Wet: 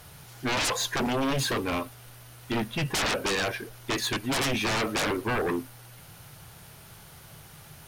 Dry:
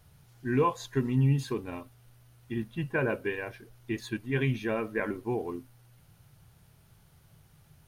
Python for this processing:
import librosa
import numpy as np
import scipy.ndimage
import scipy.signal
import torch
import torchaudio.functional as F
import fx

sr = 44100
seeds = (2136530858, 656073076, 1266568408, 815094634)

y = fx.low_shelf(x, sr, hz=250.0, db=-11.0)
y = fx.fold_sine(y, sr, drive_db=19, ceiling_db=-17.0)
y = y * 10.0 ** (-6.5 / 20.0)